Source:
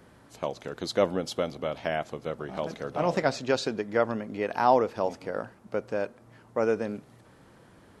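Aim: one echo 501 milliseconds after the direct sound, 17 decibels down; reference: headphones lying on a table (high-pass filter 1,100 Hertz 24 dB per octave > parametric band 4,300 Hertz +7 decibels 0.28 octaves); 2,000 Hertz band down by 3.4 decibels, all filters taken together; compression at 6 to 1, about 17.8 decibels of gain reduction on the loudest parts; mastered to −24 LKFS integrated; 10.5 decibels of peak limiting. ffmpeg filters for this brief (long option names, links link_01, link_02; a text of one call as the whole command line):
ffmpeg -i in.wav -af "equalizer=frequency=2000:width_type=o:gain=-4.5,acompressor=threshold=-36dB:ratio=6,alimiter=level_in=7dB:limit=-24dB:level=0:latency=1,volume=-7dB,highpass=frequency=1100:width=0.5412,highpass=frequency=1100:width=1.3066,equalizer=frequency=4300:width_type=o:width=0.28:gain=7,aecho=1:1:501:0.141,volume=26dB" out.wav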